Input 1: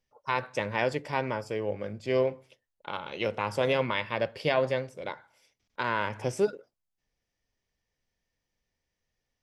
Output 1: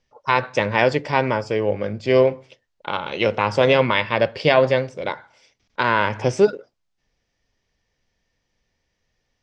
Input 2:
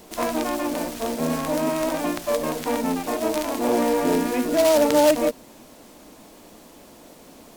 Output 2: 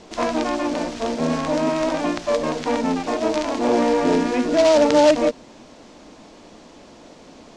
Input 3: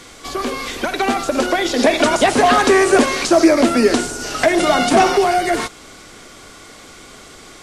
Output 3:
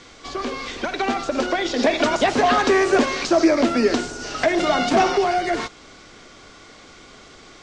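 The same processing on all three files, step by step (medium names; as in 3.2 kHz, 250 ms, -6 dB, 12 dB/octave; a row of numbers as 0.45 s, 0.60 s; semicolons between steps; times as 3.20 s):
low-pass 6.5 kHz 24 dB/octave; normalise loudness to -20 LUFS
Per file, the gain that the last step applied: +10.5 dB, +2.5 dB, -4.5 dB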